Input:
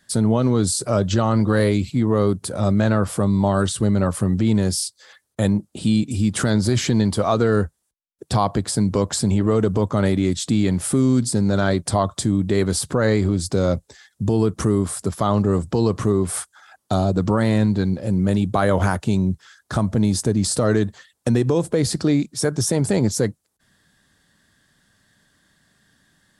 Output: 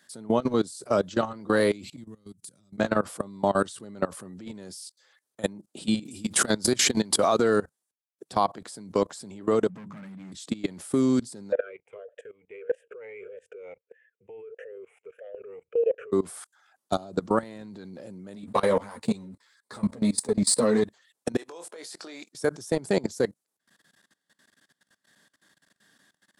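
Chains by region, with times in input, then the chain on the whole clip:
1.96–2.78 EQ curve 140 Hz 0 dB, 660 Hz -25 dB, 7400 Hz +1 dB + compressor 16:1, threshold -29 dBFS + HPF 93 Hz
6.05–7.58 high shelf 9400 Hz +9 dB + backwards sustainer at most 30 dB/s
9.69–10.32 notches 50/100/150/200/250/300/350/400 Hz + hard clip -22 dBFS + EQ curve 120 Hz 0 dB, 170 Hz +14 dB, 380 Hz -13 dB, 2300 Hz 0 dB, 3700 Hz -8 dB
11.52–16.12 EQ curve 110 Hz 0 dB, 320 Hz -30 dB, 460 Hz +14 dB, 690 Hz +5 dB, 1000 Hz -16 dB, 1600 Hz +11 dB, 2900 Hz +7 dB, 4300 Hz -25 dB, 6600 Hz -4 dB + vowel sweep e-u 1.6 Hz
18.35–20.85 ripple EQ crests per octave 0.96, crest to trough 9 dB + sample leveller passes 1 + ensemble effect
21.37–22.33 HPF 680 Hz + compressor, threshold -30 dBFS + doubler 23 ms -9.5 dB
whole clip: HPF 250 Hz 12 dB/oct; level quantiser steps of 21 dB

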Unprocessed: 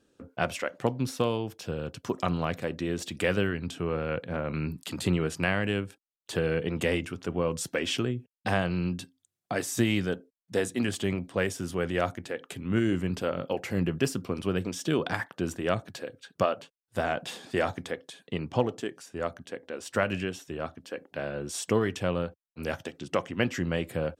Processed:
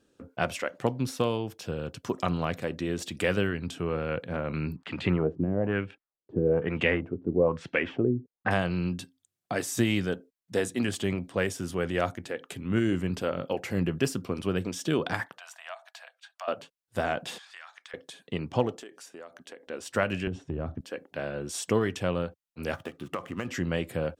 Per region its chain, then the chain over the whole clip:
4.76–8.51 block floating point 7-bit + LFO low-pass sine 1.1 Hz 300–2700 Hz
15.38–16.48 Chebyshev high-pass 650 Hz, order 6 + high shelf 5300 Hz -6 dB + compressor 2:1, threshold -43 dBFS
17.38–17.94 HPF 1100 Hz 24 dB/oct + compressor 4:1, threshold -43 dBFS + air absorption 54 m
18.76–19.67 HPF 300 Hz + compressor 8:1, threshold -40 dBFS
20.27–20.81 LPF 9600 Hz 24 dB/oct + tilt -4.5 dB/oct + compressor 4:1, threshold -28 dBFS
22.74–23.49 median filter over 9 samples + bell 1200 Hz +12 dB 0.2 oct + compressor 12:1, threshold -27 dBFS
whole clip: dry

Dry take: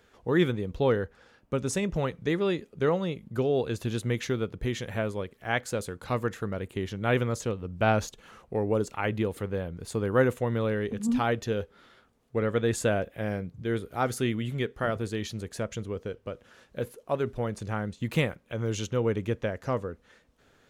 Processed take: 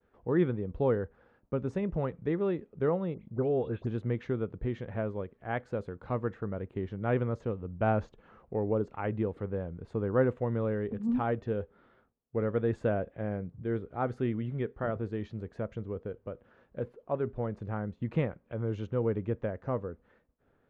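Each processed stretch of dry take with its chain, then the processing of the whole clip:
3.14–3.87 expander -49 dBFS + dispersion highs, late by 0.1 s, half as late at 2400 Hz
whole clip: expander -58 dBFS; Bessel low-pass 1100 Hz, order 2; gain -2.5 dB

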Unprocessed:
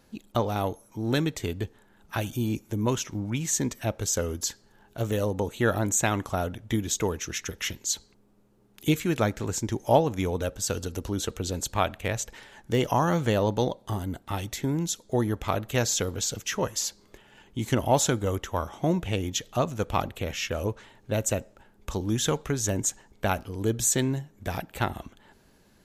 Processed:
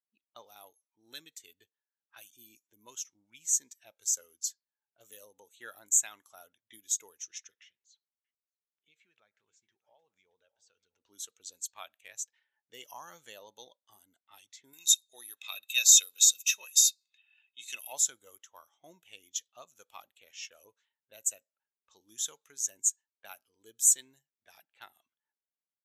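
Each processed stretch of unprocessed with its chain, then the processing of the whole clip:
7.62–11 bell 290 Hz -7 dB 0.41 oct + compressor 4:1, threshold -35 dBFS + echo 0.624 s -14 dB
14.73–17.93 tilt +2.5 dB/oct + small resonant body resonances 2600/3700 Hz, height 17 dB, ringing for 30 ms + mismatched tape noise reduction encoder only
whole clip: low-pass opened by the level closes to 1200 Hz, open at -25.5 dBFS; differentiator; spectral expander 1.5:1; gain +3.5 dB

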